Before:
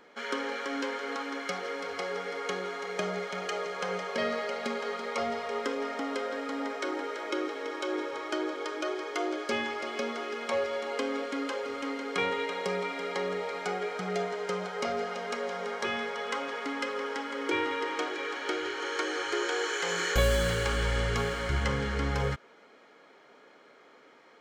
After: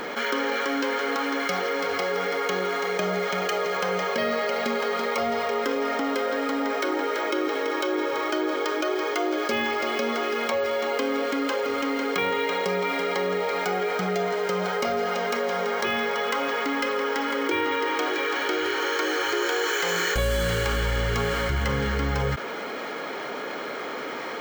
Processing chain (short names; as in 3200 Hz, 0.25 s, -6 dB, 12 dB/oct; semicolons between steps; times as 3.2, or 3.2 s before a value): careless resampling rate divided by 2×, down none, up hold; fast leveller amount 70%; gain -1 dB